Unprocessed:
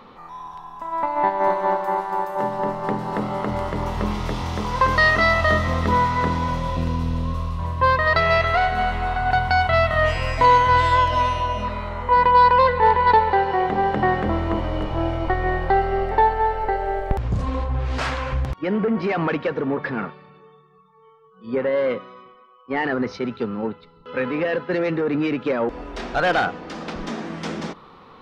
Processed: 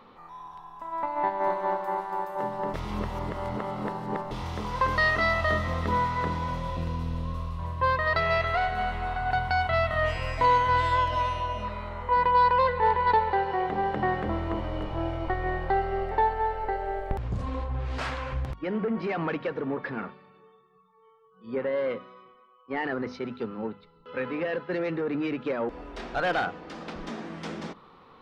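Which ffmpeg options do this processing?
-filter_complex "[0:a]asplit=3[a][b][c];[a]atrim=end=2.742[d];[b]atrim=start=2.738:end=4.312,asetpts=PTS-STARTPTS,areverse[e];[c]atrim=start=4.308[f];[d][e]acrossfade=d=0.004:c1=hsin:c2=hsin[g];[g][f]acrossfade=d=0.004:c1=hsin:c2=hsin,equalizer=f=6.2k:t=o:w=0.77:g=-2.5,bandreject=f=50:t=h:w=6,bandreject=f=100:t=h:w=6,bandreject=f=150:t=h:w=6,bandreject=f=200:t=h:w=6,bandreject=f=250:t=h:w=6,volume=-7dB"

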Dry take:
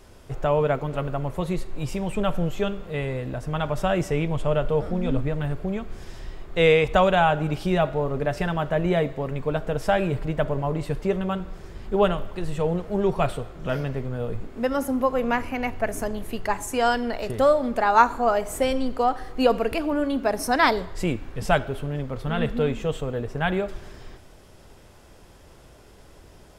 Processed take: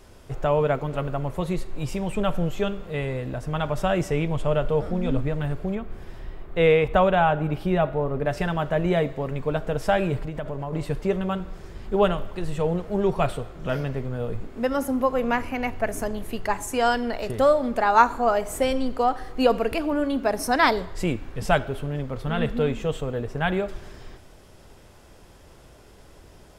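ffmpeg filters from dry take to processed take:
-filter_complex "[0:a]asettb=1/sr,asplit=3[a][b][c];[a]atrim=end=5.754[d];[b]atrim=start=5.75:end=8.26,asetpts=PTS-STARTPTS,afade=t=in:d=0.004:c=qsin,afade=t=out:st=2.506:d=0.004:c=qsin,equalizer=f=6.5k:t=o:w=1.7:g=-12[e];[c]atrim=start=8.256[f];[d][e]acrossfade=d=0.004:c1=hsin:c2=qsin[g];[g][f]acrossfade=d=0.004:c1=qsin:c2=hsin,asettb=1/sr,asplit=3[h][i][j];[h]atrim=end=10.194[k];[i]atrim=start=10.19:end=10.73,asetpts=PTS-STARTPTS,afade=t=in:d=0.004:c=qsin,afade=t=out:st=0.536:d=0.004:c=qsin,acompressor=threshold=-26dB:ratio=12:attack=3.2:release=140:knee=1:detection=peak[l];[j]atrim=start=10.726[m];[k][l]acrossfade=d=0.004:c1=hsin:c2=qsin[n];[n][m]acrossfade=d=0.004:c1=qsin:c2=hsin"

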